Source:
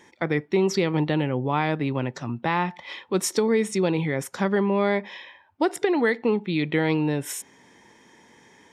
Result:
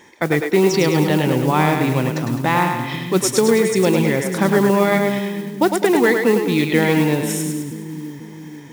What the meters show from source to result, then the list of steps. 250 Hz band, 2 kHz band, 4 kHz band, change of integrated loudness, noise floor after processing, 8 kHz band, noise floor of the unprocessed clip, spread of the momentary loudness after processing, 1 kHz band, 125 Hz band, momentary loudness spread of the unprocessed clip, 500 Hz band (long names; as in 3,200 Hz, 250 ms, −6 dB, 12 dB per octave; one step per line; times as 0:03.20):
+7.5 dB, +7.5 dB, +8.0 dB, +7.0 dB, −36 dBFS, +8.5 dB, −56 dBFS, 11 LU, +7.5 dB, +7.5 dB, 7 LU, +7.5 dB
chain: echo with a time of its own for lows and highs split 310 Hz, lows 488 ms, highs 104 ms, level −5 dB
noise that follows the level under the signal 21 dB
level +6 dB